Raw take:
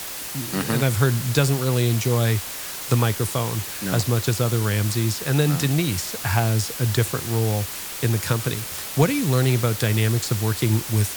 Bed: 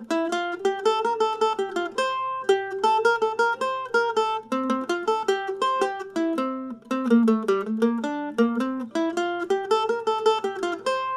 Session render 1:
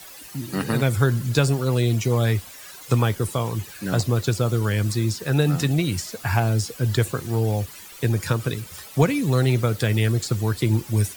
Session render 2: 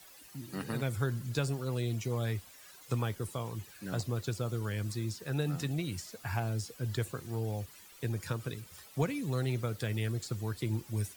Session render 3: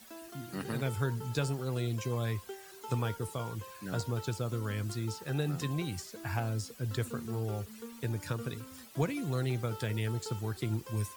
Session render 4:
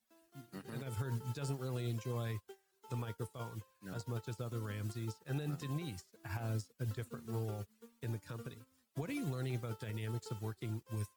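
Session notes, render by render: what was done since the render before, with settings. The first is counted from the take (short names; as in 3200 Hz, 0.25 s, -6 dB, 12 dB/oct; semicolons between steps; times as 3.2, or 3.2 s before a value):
denoiser 13 dB, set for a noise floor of -33 dBFS
gain -13 dB
add bed -24.5 dB
limiter -28.5 dBFS, peak gain reduction 10.5 dB; upward expander 2.5:1, over -53 dBFS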